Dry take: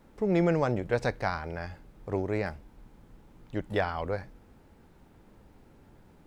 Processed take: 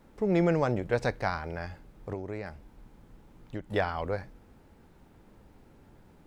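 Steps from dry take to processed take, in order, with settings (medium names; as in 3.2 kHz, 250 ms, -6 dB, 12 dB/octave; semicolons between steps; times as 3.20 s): 2.12–3.73 s: compression 6:1, threshold -33 dBFS, peak gain reduction 8 dB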